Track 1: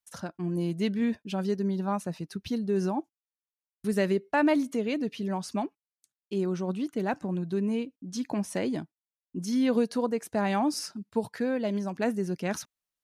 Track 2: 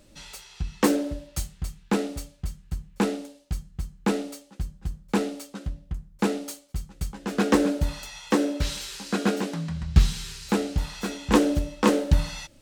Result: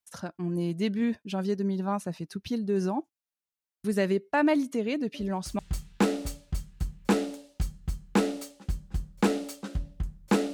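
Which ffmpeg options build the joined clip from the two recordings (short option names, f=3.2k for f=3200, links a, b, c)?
-filter_complex "[1:a]asplit=2[a][b];[0:a]apad=whole_dur=10.53,atrim=end=10.53,atrim=end=5.592[c];[b]atrim=start=1.498:end=6.44[d];[a]atrim=start=1.05:end=1.5,asetpts=PTS-STARTPTS,volume=-14dB,afade=t=in:d=0.004:c=hsin,afade=t=out:st=0.446:d=0.004:c=hsin,adelay=5140[e];[c][d]acrossfade=d=0.004:c1=hsin:c2=hsin[f];[f][e]amix=inputs=2:normalize=0"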